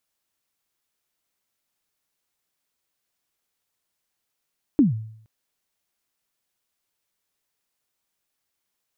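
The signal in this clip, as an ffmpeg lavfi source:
ffmpeg -f lavfi -i "aevalsrc='0.316*pow(10,-3*t/0.65)*sin(2*PI*(320*0.144/log(110/320)*(exp(log(110/320)*min(t,0.144)/0.144)-1)+110*max(t-0.144,0)))':duration=0.47:sample_rate=44100" out.wav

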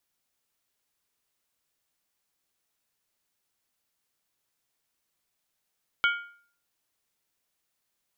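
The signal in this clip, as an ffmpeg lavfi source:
ffmpeg -f lavfi -i "aevalsrc='0.112*pow(10,-3*t/0.51)*sin(2*PI*1410*t)+0.0708*pow(10,-3*t/0.404)*sin(2*PI*2247.5*t)+0.0447*pow(10,-3*t/0.349)*sin(2*PI*3011.8*t)+0.0282*pow(10,-3*t/0.337)*sin(2*PI*3237.4*t)':duration=0.63:sample_rate=44100" out.wav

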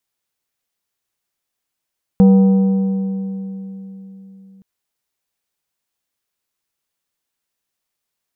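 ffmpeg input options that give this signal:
ffmpeg -f lavfi -i "aevalsrc='0.562*pow(10,-3*t/3.89)*sin(2*PI*193*t)+0.158*pow(10,-3*t/2.955)*sin(2*PI*482.5*t)+0.0447*pow(10,-3*t/2.566)*sin(2*PI*772*t)+0.0126*pow(10,-3*t/2.4)*sin(2*PI*965*t)+0.00355*pow(10,-3*t/2.219)*sin(2*PI*1254.5*t)':duration=2.42:sample_rate=44100" out.wav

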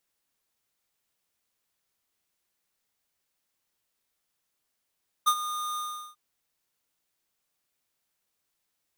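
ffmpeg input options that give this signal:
ffmpeg -f lavfi -i "aevalsrc='0.106*(2*lt(mod(1220*t,1),0.5)-1)':duration=0.893:sample_rate=44100,afade=type=in:duration=0.018,afade=type=out:start_time=0.018:duration=0.065:silence=0.224,afade=type=out:start_time=0.51:duration=0.383" out.wav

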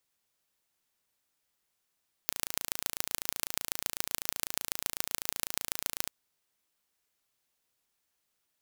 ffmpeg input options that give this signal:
ffmpeg -f lavfi -i "aevalsrc='0.841*eq(mod(n,1575),0)*(0.5+0.5*eq(mod(n,6300),0))':duration=3.79:sample_rate=44100" out.wav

